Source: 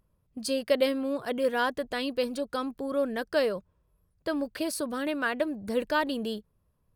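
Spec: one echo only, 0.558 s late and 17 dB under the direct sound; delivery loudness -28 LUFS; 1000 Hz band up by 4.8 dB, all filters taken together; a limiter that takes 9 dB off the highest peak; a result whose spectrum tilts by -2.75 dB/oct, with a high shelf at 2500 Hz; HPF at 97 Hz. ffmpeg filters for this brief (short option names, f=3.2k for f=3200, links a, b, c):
-af "highpass=97,equalizer=f=1k:t=o:g=7,highshelf=f=2.5k:g=-7,alimiter=limit=-20dB:level=0:latency=1,aecho=1:1:558:0.141,volume=3dB"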